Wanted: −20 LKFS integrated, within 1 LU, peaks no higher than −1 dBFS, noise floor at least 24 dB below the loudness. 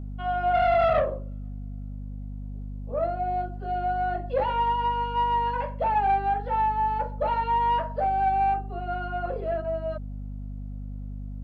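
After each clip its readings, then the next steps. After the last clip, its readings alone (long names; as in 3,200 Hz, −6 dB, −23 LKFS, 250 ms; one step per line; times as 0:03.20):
mains hum 50 Hz; hum harmonics up to 250 Hz; level of the hum −33 dBFS; integrated loudness −26.0 LKFS; sample peak −14.0 dBFS; target loudness −20.0 LKFS
→ mains-hum notches 50/100/150/200/250 Hz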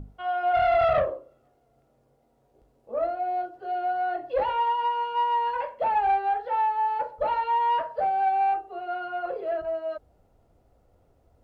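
mains hum none found; integrated loudness −26.0 LKFS; sample peak −14.5 dBFS; target loudness −20.0 LKFS
→ level +6 dB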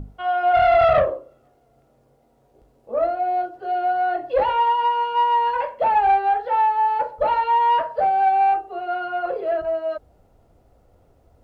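integrated loudness −20.0 LKFS; sample peak −8.5 dBFS; background noise floor −60 dBFS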